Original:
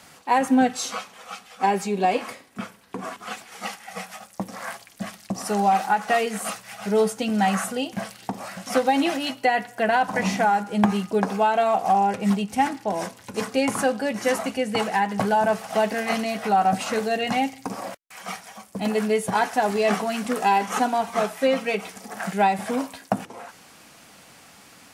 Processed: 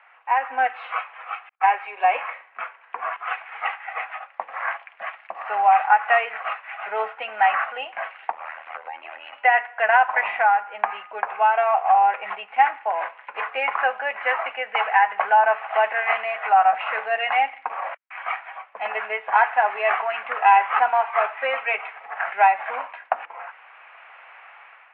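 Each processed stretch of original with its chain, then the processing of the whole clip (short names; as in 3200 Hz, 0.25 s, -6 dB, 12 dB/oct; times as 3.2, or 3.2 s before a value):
1.49–2.04 gate -41 dBFS, range -46 dB + HPF 550 Hz 6 dB/oct
8.32–9.33 AM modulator 80 Hz, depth 90% + compressor 12:1, threshold -33 dBFS
whole clip: steep low-pass 2600 Hz 48 dB/oct; AGC gain up to 8.5 dB; HPF 770 Hz 24 dB/oct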